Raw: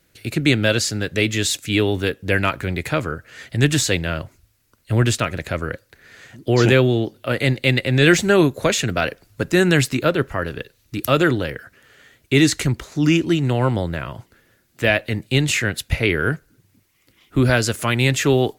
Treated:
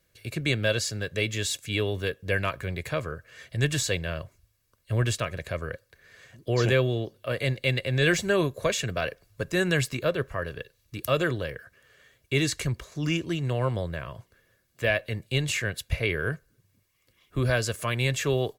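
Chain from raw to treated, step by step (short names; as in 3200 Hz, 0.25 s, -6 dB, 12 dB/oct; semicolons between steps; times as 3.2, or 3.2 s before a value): comb 1.8 ms, depth 49%; gain -9 dB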